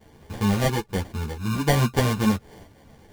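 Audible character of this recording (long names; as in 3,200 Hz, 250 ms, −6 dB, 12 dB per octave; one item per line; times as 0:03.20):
tremolo saw up 1.5 Hz, depth 35%
aliases and images of a low sample rate 1,300 Hz, jitter 0%
a shimmering, thickened sound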